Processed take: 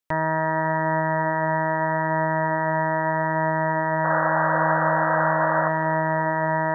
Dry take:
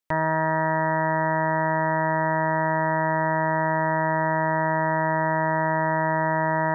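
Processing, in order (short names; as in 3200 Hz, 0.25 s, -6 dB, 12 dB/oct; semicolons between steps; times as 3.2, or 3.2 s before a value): painted sound noise, 4.04–5.69, 490–1700 Hz -25 dBFS; tape echo 0.273 s, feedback 86%, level -14 dB, low-pass 1300 Hz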